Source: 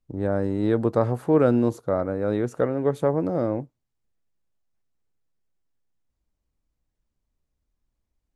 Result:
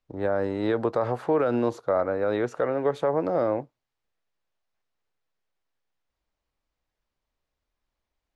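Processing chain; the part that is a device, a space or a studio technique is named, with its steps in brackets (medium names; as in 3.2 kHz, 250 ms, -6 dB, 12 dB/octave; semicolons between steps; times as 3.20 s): DJ mixer with the lows and highs turned down (three-band isolator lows -13 dB, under 460 Hz, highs -17 dB, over 5.5 kHz; peak limiter -20 dBFS, peak gain reduction 9 dB); trim +5.5 dB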